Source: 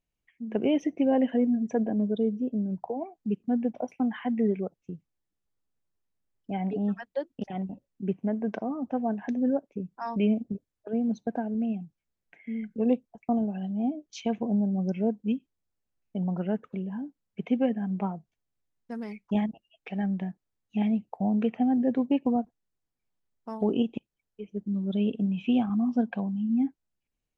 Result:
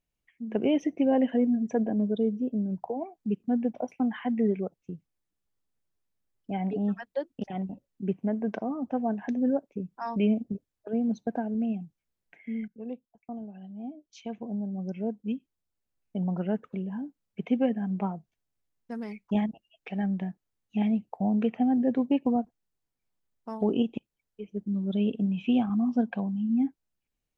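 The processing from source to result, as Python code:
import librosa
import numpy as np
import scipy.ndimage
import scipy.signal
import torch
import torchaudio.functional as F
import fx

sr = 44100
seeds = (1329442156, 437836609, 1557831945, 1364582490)

y = fx.edit(x, sr, fx.fade_in_from(start_s=12.68, length_s=3.48, curve='qua', floor_db=-13.5), tone=tone)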